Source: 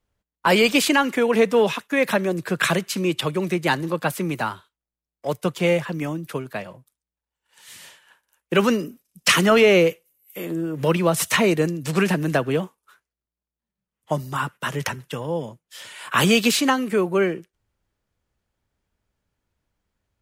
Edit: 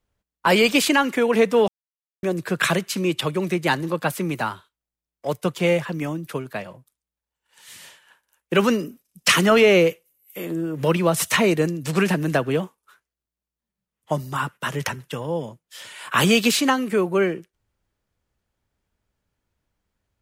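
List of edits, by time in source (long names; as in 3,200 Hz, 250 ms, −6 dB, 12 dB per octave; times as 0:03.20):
0:01.68–0:02.23: silence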